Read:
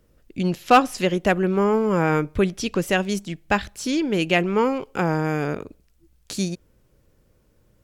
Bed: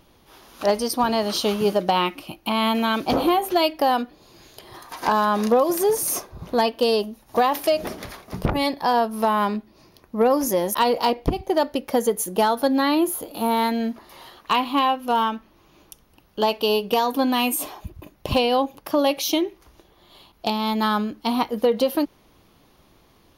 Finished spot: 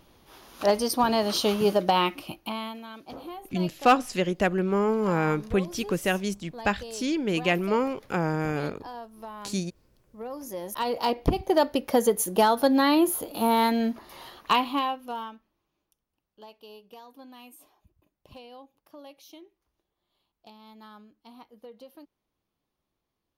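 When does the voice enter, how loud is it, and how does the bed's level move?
3.15 s, -4.5 dB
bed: 2.32 s -2 dB
2.82 s -20.5 dB
10.20 s -20.5 dB
11.30 s -1 dB
14.51 s -1 dB
15.82 s -27 dB

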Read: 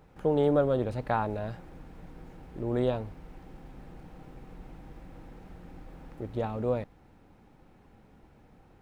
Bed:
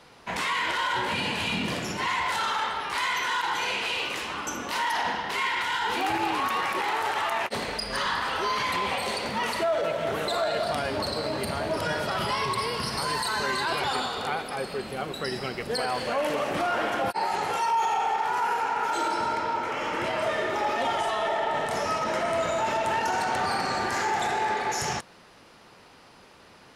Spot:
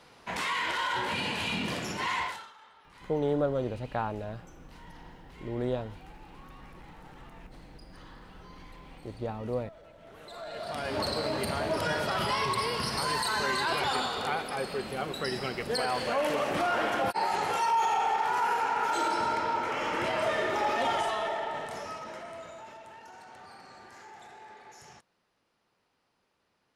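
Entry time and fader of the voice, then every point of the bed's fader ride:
2.85 s, -3.5 dB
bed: 2.23 s -3.5 dB
2.53 s -27 dB
9.94 s -27 dB
11.00 s -1.5 dB
20.96 s -1.5 dB
22.93 s -23 dB

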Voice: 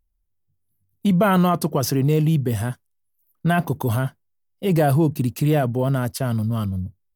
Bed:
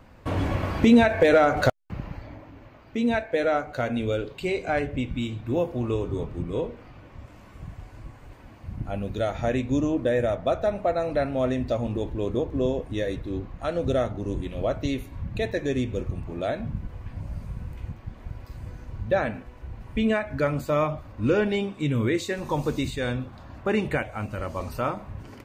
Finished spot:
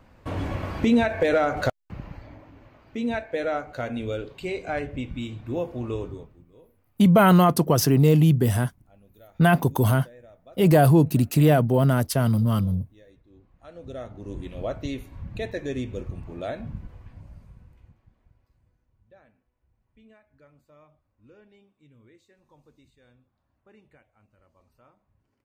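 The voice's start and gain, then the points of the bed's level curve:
5.95 s, +1.5 dB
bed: 6.05 s -3.5 dB
6.46 s -25.5 dB
13.27 s -25.5 dB
14.44 s -4 dB
16.74 s -4 dB
18.88 s -32 dB

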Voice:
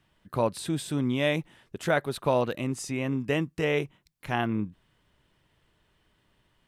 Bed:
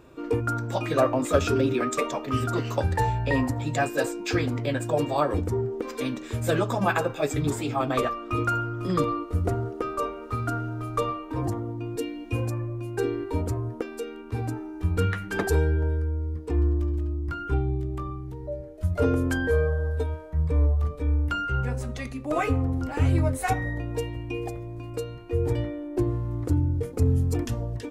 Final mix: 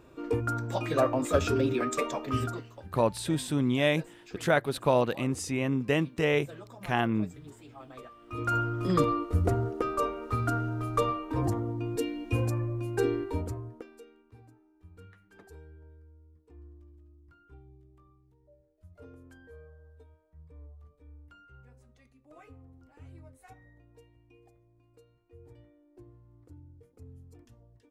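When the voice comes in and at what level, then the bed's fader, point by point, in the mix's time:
2.60 s, +0.5 dB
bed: 2.45 s -3.5 dB
2.71 s -22 dB
8.13 s -22 dB
8.56 s -0.5 dB
13.14 s -0.5 dB
14.55 s -28 dB

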